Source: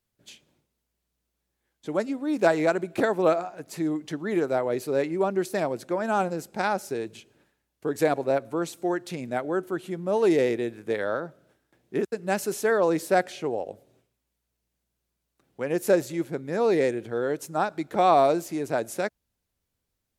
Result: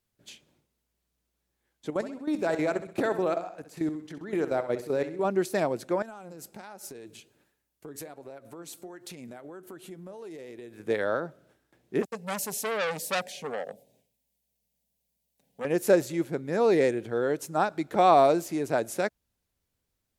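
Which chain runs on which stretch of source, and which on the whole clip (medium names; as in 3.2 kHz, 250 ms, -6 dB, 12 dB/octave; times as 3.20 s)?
1.90–5.25 s: level held to a coarse grid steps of 13 dB + feedback delay 65 ms, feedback 43%, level -12 dB
6.02–10.80 s: compression 10:1, threshold -35 dBFS + flange 1.3 Hz, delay 2 ms, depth 5.5 ms, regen +83% + treble shelf 7.3 kHz +9 dB
12.02–15.65 s: treble shelf 11 kHz +8.5 dB + static phaser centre 340 Hz, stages 6 + transformer saturation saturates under 3 kHz
whole clip: none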